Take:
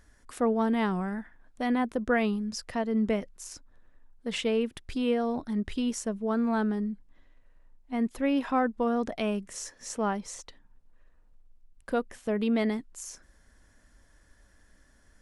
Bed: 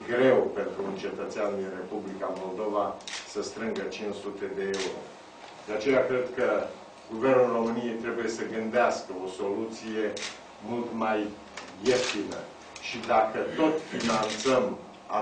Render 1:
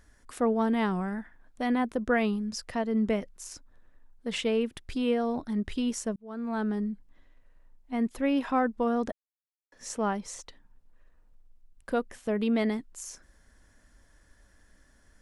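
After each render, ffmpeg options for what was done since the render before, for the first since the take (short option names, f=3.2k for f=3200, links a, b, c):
-filter_complex "[0:a]asplit=4[a][b][c][d];[a]atrim=end=6.16,asetpts=PTS-STARTPTS,afade=t=out:st=6.156:d=0.004:c=hsin[e];[b]atrim=start=6.16:end=9.12,asetpts=PTS-STARTPTS,afade=t=in:d=0.61,afade=t=out:st=2.956:d=0.004:c=hsin[f];[c]atrim=start=9.12:end=9.72,asetpts=PTS-STARTPTS,volume=0[g];[d]atrim=start=9.72,asetpts=PTS-STARTPTS,afade=t=in:d=0.004:c=hsin[h];[e][f][g][h]concat=n=4:v=0:a=1"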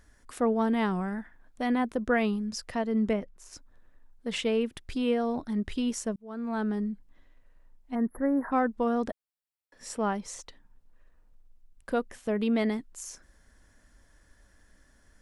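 -filter_complex "[0:a]asettb=1/sr,asplit=3[a][b][c];[a]atrim=end=3.134[d];[b]atrim=start=3.13:end=3.53,asetpts=PTS-STARTPTS,afade=t=in:d=0.004:c=qsin,afade=t=out:st=0.396:d=0.004:c=qsin,highshelf=f=2.8k:g=-11[e];[c]atrim=start=3.526[f];[d][e]acrossfade=d=0.004:c1=hsin:c2=qsin[g];[g][f]acrossfade=d=0.004:c1=qsin:c2=hsin,asplit=3[h][i][j];[h]afade=t=out:st=7.94:d=0.02[k];[i]asuperstop=centerf=4600:order=20:qfactor=0.58,afade=t=in:st=7.94:d=0.02,afade=t=out:st=8.51:d=0.02[l];[j]afade=t=in:st=8.51:d=0.02[m];[k][l][m]amix=inputs=3:normalize=0,asettb=1/sr,asplit=3[n][o][p];[n]atrim=end=9.074[q];[o]atrim=start=9.07:end=10.1,asetpts=PTS-STARTPTS,afade=t=in:d=0.004:c=qsin,afade=t=out:st=1.026:d=0.004:c=qsin,bandreject=f=6.4k:w=5.6[r];[p]atrim=start=10.096[s];[q][r]acrossfade=d=0.004:c1=hsin:c2=qsin[t];[t][s]acrossfade=d=0.004:c1=qsin:c2=hsin"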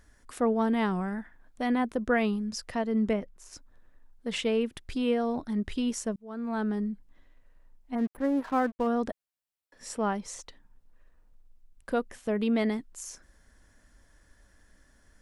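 -filter_complex "[0:a]asplit=3[a][b][c];[a]afade=t=out:st=7.97:d=0.02[d];[b]aeval=exprs='sgn(val(0))*max(abs(val(0))-0.00596,0)':c=same,afade=t=in:st=7.97:d=0.02,afade=t=out:st=8.86:d=0.02[e];[c]afade=t=in:st=8.86:d=0.02[f];[d][e][f]amix=inputs=3:normalize=0"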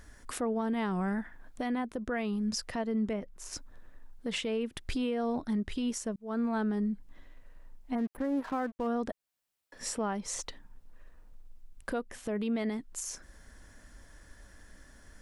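-filter_complex "[0:a]asplit=2[a][b];[b]acompressor=threshold=-36dB:ratio=6,volume=1dB[c];[a][c]amix=inputs=2:normalize=0,alimiter=level_in=0.5dB:limit=-24dB:level=0:latency=1:release=322,volume=-0.5dB"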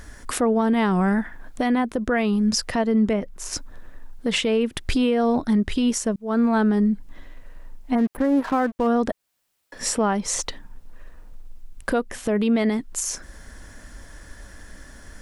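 -af "volume=11.5dB"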